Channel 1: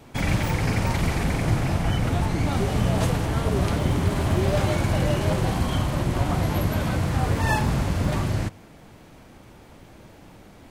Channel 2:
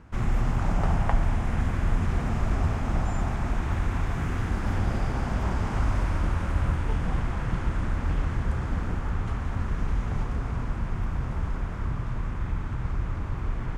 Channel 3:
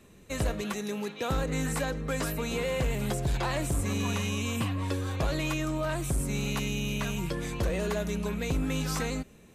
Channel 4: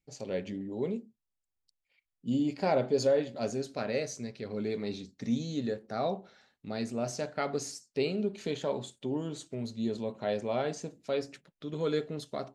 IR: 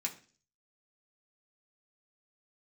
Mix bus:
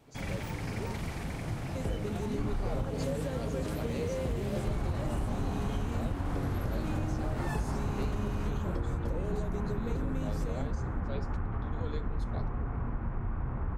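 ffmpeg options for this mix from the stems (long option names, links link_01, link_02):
-filter_complex "[0:a]volume=-13dB[link_01];[1:a]lowpass=1300,adelay=2250,volume=-3.5dB,asplit=3[link_02][link_03][link_04];[link_02]atrim=end=2.9,asetpts=PTS-STARTPTS,afade=type=out:start_time=2.896:duration=0.004:curve=hsin[link_05];[link_03]atrim=start=2.9:end=4.67,asetpts=PTS-STARTPTS,volume=0[link_06];[link_04]atrim=start=4.67,asetpts=PTS-STARTPTS,afade=type=in:duration=0.004:curve=hsin[link_07];[link_05][link_06][link_07]concat=n=3:v=0:a=1,asplit=2[link_08][link_09];[link_09]volume=-7dB[link_10];[2:a]lowshelf=frequency=650:width_type=q:width=1.5:gain=10.5,adelay=1450,volume=-13.5dB[link_11];[3:a]volume=-9dB[link_12];[4:a]atrim=start_sample=2205[link_13];[link_10][link_13]afir=irnorm=-1:irlink=0[link_14];[link_01][link_08][link_11][link_12][link_14]amix=inputs=5:normalize=0,acompressor=threshold=-28dB:ratio=6"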